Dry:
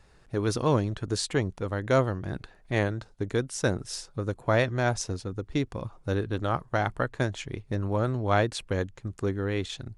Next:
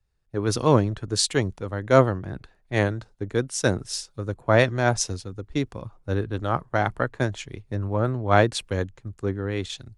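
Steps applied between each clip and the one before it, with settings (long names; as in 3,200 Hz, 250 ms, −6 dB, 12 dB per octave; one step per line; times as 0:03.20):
multiband upward and downward expander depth 70%
level +3 dB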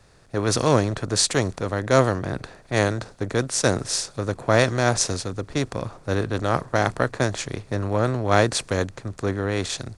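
compressor on every frequency bin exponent 0.6
dynamic equaliser 7,500 Hz, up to +5 dB, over −37 dBFS, Q 0.74
level −2.5 dB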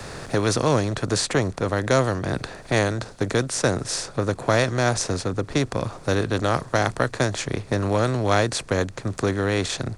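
multiband upward and downward compressor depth 70%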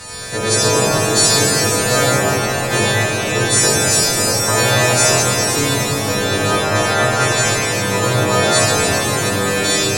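every partial snapped to a pitch grid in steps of 2 semitones
reverb with rising layers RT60 3.7 s, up +7 semitones, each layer −8 dB, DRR −8 dB
level −2 dB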